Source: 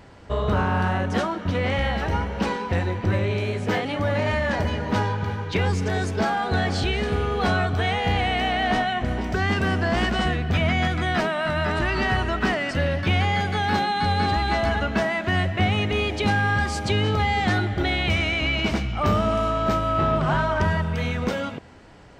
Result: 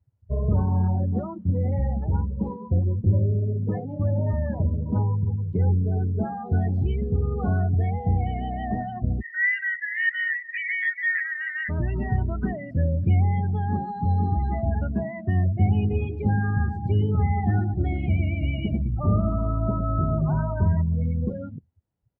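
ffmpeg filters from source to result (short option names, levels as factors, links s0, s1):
-filter_complex "[0:a]asettb=1/sr,asplit=3[s0][s1][s2];[s0]atrim=end=2.544[s3];[s1]atrim=start=2.54:end=6.46,asetpts=PTS-STARTPTS,afade=t=in:d=0.004:c=qsin,afade=t=out:st=3.916:d=0.004:c=qsin,adynamicsmooth=sensitivity=4:basefreq=660[s4];[s2]atrim=start=6.456[s5];[s3][s4]acrossfade=d=0.004:c1=hsin:c2=qsin[s6];[s6][s5]acrossfade=d=0.004:c1=qsin:c2=hsin,asplit=3[s7][s8][s9];[s7]afade=t=out:st=9.2:d=0.02[s10];[s8]highpass=f=1900:t=q:w=14,afade=t=in:st=9.2:d=0.02,afade=t=out:st=11.68:d=0.02[s11];[s9]afade=t=in:st=11.68:d=0.02[s12];[s10][s11][s12]amix=inputs=3:normalize=0,asettb=1/sr,asplit=3[s13][s14][s15];[s13]atrim=end=15.574[s16];[s14]atrim=start=15.57:end=20.11,asetpts=PTS-STARTPTS,afade=t=in:d=0.004:c=qsin,afade=t=out:st=4.536:d=0.004:c=qsin,aecho=1:1:112|224|336|448|560|672:0.398|0.211|0.112|0.0593|0.0314|0.0166,atrim=end_sample=200214[s17];[s15]atrim=start=20.106[s18];[s16][s17]acrossfade=d=0.004:c1=hsin:c2=qsin[s19];[s19][s18]acrossfade=d=0.004:c1=qsin:c2=hsin,firequalizer=gain_entry='entry(110,0);entry(280,-9);entry(1600,-16)':delay=0.05:min_phase=1,afftdn=nr=34:nf=-30,highpass=59,volume=1.68"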